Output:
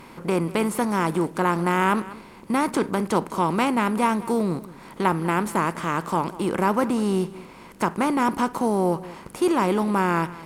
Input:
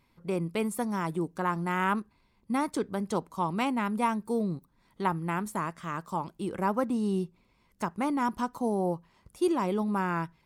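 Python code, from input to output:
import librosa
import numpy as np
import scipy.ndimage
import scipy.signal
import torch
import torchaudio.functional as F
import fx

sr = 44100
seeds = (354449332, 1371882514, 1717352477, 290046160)

p1 = fx.bin_compress(x, sr, power=0.6)
p2 = p1 + fx.echo_single(p1, sr, ms=196, db=-18.0, dry=0)
y = F.gain(torch.from_numpy(p2), 4.0).numpy()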